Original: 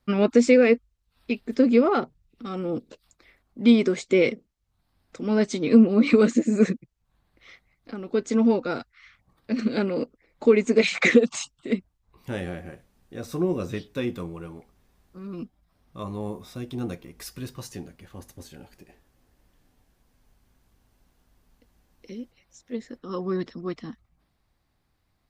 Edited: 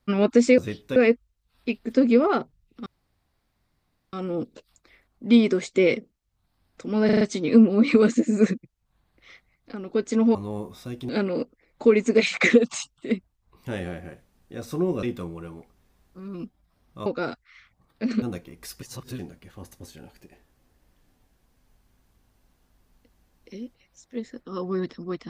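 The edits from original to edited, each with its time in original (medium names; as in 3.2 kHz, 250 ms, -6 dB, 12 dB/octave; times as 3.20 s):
2.48 s: insert room tone 1.27 s
5.40 s: stutter 0.04 s, 5 plays
8.54–9.70 s: swap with 16.05–16.79 s
13.64–14.02 s: move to 0.58 s
17.39–17.76 s: reverse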